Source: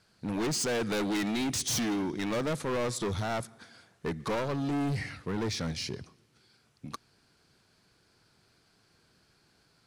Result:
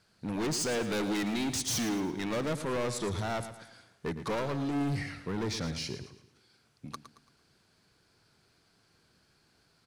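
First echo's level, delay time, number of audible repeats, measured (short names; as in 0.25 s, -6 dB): -11.5 dB, 0.112 s, 3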